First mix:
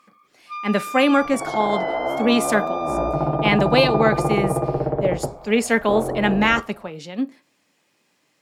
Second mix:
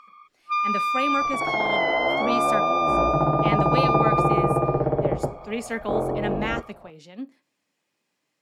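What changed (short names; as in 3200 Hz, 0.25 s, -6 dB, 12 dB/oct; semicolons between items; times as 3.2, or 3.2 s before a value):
speech -11.0 dB; first sound +8.0 dB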